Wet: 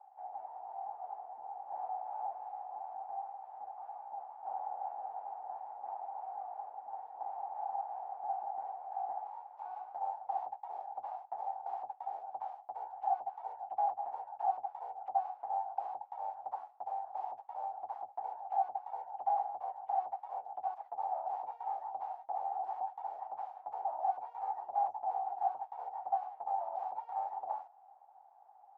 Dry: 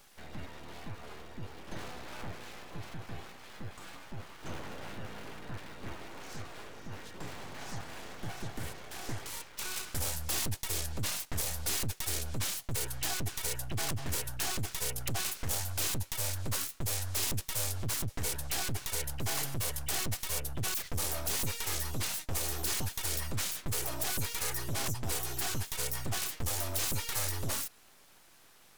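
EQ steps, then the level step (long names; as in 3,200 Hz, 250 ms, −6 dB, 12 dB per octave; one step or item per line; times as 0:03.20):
flat-topped band-pass 790 Hz, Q 6.1
+16.0 dB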